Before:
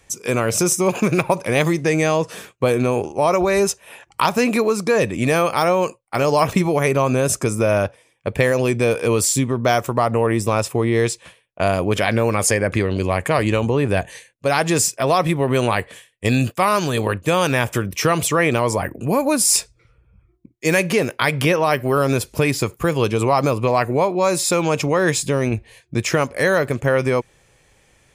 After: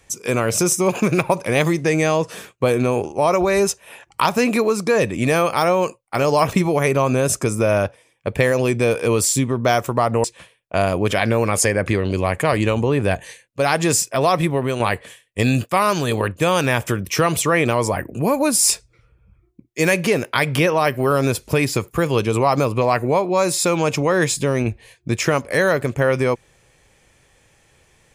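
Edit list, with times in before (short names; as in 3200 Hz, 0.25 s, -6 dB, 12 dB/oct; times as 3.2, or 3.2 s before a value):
10.24–11.1 cut
15.36–15.66 fade out, to -7 dB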